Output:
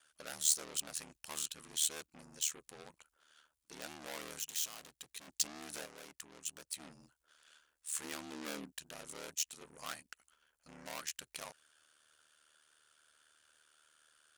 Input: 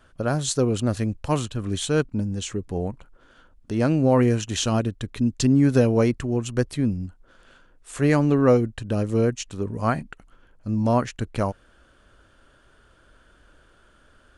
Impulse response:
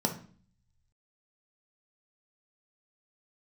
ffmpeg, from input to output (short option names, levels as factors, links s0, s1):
-filter_complex "[0:a]asoftclip=type=tanh:threshold=0.0668,aeval=exprs='0.0668*(cos(1*acos(clip(val(0)/0.0668,-1,1)))-cos(1*PI/2))+0.00596*(cos(6*acos(clip(val(0)/0.0668,-1,1)))-cos(6*PI/2))':c=same,asettb=1/sr,asplit=3[s0][s1][s2];[s0]atrim=end=8.044[s3];[s1]atrim=start=8.04:end=8.72,asetpts=PTS-STARTPTS,afade=t=in:d=0.004:c=qsin,afade=t=out:st=0.676:d=0.004:c=qsin,equalizer=f=240:w=2.9:g=12.5[s4];[s2]atrim=start=8.716[s5];[s3][s4]acrossfade=d=0.004:c1=hsin:c2=qsin[s6];[s6][s5]acrossfade=d=0.004:c1=qsin:c2=hsin,aeval=exprs='val(0)*sin(2*PI*38*n/s)':c=same,asettb=1/sr,asplit=3[s7][s8][s9];[s7]atrim=end=4.394[s10];[s8]atrim=start=4.39:end=5.28,asetpts=PTS-STARTPTS,afade=t=in:d=0.004:c=qsin,afade=t=out:st=0.886:d=0.004:c=qsin,asoftclip=type=hard:threshold=0.0168[s11];[s9]atrim=start=5.276[s12];[s10][s11]acrossfade=d=0.004:c1=hsin:c2=qsin[s13];[s13][s12]acrossfade=d=0.004:c1=qsin:c2=hsin,asettb=1/sr,asplit=3[s14][s15][s16];[s14]atrim=end=5.854[s17];[s15]atrim=start=5.85:end=6.8,asetpts=PTS-STARTPTS,afade=t=in:d=0.004:c=qsin,afade=t=out:st=0.946:d=0.004:c=qsin,acompressor=threshold=0.0178:ratio=3[s18];[s16]atrim=start=6.796[s19];[s17][s18]acrossfade=d=0.004:c1=hsin:c2=qsin[s20];[s20][s19]acrossfade=d=0.004:c1=qsin:c2=hsin,aderivative,volume=1.58"